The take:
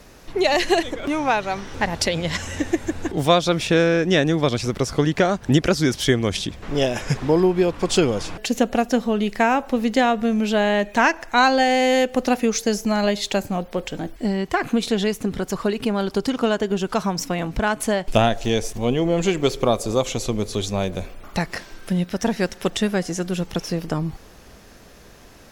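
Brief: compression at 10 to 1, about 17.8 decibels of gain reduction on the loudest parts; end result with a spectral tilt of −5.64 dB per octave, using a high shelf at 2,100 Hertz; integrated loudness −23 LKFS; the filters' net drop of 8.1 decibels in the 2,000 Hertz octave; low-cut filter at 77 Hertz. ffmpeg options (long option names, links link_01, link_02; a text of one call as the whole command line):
ffmpeg -i in.wav -af "highpass=77,equalizer=frequency=2000:width_type=o:gain=-8,highshelf=frequency=2100:gain=-5.5,acompressor=threshold=-32dB:ratio=10,volume=14dB" out.wav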